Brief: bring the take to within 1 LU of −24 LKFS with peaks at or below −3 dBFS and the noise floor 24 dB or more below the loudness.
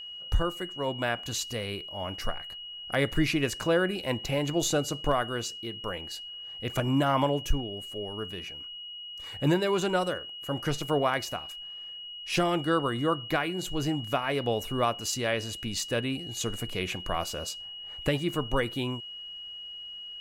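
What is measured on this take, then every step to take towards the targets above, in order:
interfering tone 2,900 Hz; level of the tone −39 dBFS; integrated loudness −30.5 LKFS; sample peak −13.5 dBFS; target loudness −24.0 LKFS
→ notch filter 2,900 Hz, Q 30
level +6.5 dB

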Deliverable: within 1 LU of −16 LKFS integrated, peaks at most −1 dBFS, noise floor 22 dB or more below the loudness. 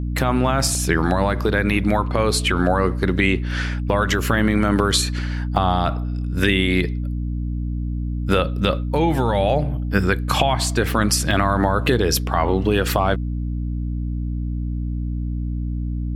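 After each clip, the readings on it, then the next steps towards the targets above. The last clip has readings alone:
number of dropouts 4; longest dropout 1.2 ms; mains hum 60 Hz; hum harmonics up to 300 Hz; level of the hum −22 dBFS; integrated loudness −20.5 LKFS; sample peak −2.0 dBFS; target loudness −16.0 LKFS
→ repair the gap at 0:00.75/0:05.56/0:11.31/0:12.17, 1.2 ms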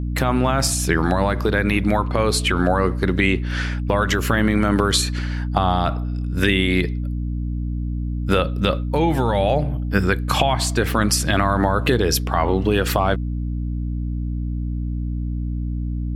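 number of dropouts 0; mains hum 60 Hz; hum harmonics up to 300 Hz; level of the hum −22 dBFS
→ mains-hum notches 60/120/180/240/300 Hz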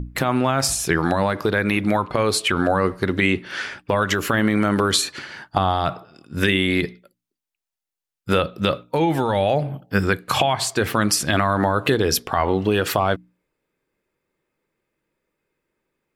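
mains hum none found; integrated loudness −21.0 LKFS; sample peak −3.0 dBFS; target loudness −16.0 LKFS
→ level +5 dB
brickwall limiter −1 dBFS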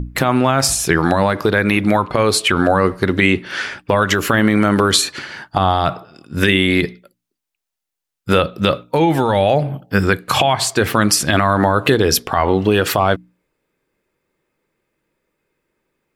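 integrated loudness −16.0 LKFS; sample peak −1.0 dBFS; background noise floor −82 dBFS

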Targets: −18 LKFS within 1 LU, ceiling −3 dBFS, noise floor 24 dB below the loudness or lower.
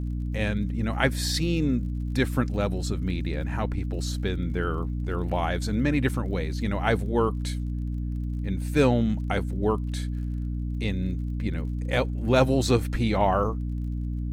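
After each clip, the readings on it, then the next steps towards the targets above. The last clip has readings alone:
crackle rate 37 per second; mains hum 60 Hz; hum harmonics up to 300 Hz; level of the hum −27 dBFS; integrated loudness −27.0 LKFS; sample peak −7.0 dBFS; target loudness −18.0 LKFS
→ click removal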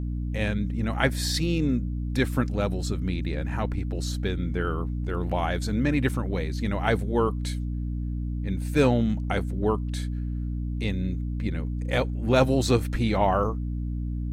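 crackle rate 0 per second; mains hum 60 Hz; hum harmonics up to 300 Hz; level of the hum −27 dBFS
→ hum removal 60 Hz, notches 5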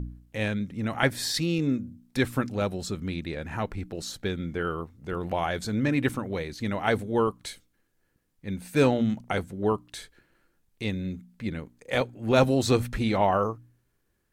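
mains hum none found; integrated loudness −28.0 LKFS; sample peak −8.0 dBFS; target loudness −18.0 LKFS
→ level +10 dB
brickwall limiter −3 dBFS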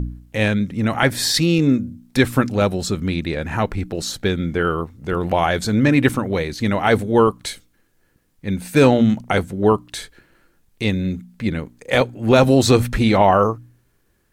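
integrated loudness −18.5 LKFS; sample peak −3.0 dBFS; background noise floor −63 dBFS

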